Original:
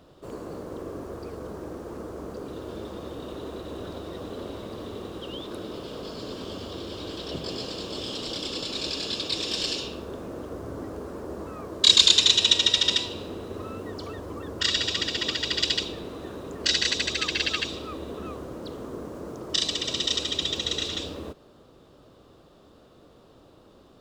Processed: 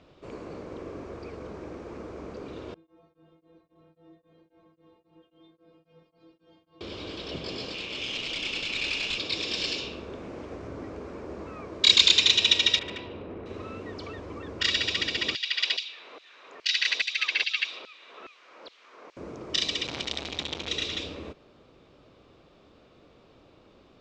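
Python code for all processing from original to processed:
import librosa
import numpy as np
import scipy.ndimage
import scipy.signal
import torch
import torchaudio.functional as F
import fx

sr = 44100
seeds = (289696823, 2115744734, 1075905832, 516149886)

y = fx.chain(x, sr, fx.lowpass(hz=1000.0, slope=6),
    fx.stiff_resonator(f0_hz=160.0, decay_s=0.72, stiffness=0.008),
    fx.tremolo_abs(hz=3.7), at=(2.74, 6.81))
y = fx.chain(y, sr, fx.peak_eq(hz=2600.0, db=13.0, octaves=0.8),
    fx.tube_stage(drive_db=23.0, bias=0.75), at=(7.74, 9.18))
y = fx.chain(y, sr, fx.cvsd(bps=64000),
    fx.doppler_dist(depth_ms=0.36), at=(10.23, 10.68))
y = fx.chain(y, sr, fx.lowpass(hz=1500.0, slope=12),
    fx.overload_stage(gain_db=31.0), at=(12.79, 13.46))
y = fx.chain(y, sr, fx.lowpass(hz=5400.0, slope=12),
    fx.filter_lfo_highpass(shape='saw_down', hz=2.4, low_hz=560.0, high_hz=3900.0, q=0.85), at=(15.35, 19.17))
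y = fx.chain(y, sr, fx.low_shelf(hz=420.0, db=10.0),
    fx.transformer_sat(knee_hz=3700.0), at=(19.86, 20.68))
y = scipy.signal.sosfilt(scipy.signal.butter(4, 6600.0, 'lowpass', fs=sr, output='sos'), y)
y = fx.peak_eq(y, sr, hz=2300.0, db=11.0, octaves=0.45)
y = y * librosa.db_to_amplitude(-3.0)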